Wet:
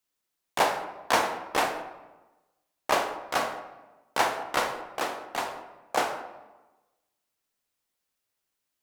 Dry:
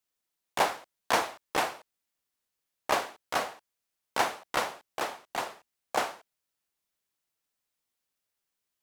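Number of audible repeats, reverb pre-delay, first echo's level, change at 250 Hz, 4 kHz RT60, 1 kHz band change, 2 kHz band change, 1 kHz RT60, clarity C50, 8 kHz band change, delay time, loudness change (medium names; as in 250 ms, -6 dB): no echo, 20 ms, no echo, +3.5 dB, 0.75 s, +3.0 dB, +3.0 dB, 1.1 s, 8.5 dB, +2.0 dB, no echo, +2.5 dB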